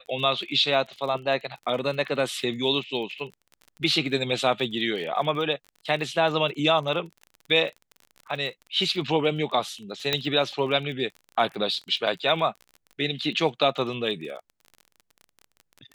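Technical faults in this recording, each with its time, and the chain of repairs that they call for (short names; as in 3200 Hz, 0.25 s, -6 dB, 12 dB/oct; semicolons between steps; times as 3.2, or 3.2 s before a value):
crackle 31/s -35 dBFS
10.13 pop -8 dBFS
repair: de-click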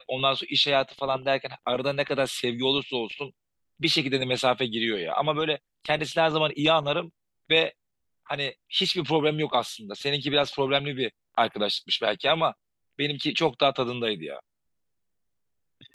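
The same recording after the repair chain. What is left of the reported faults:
none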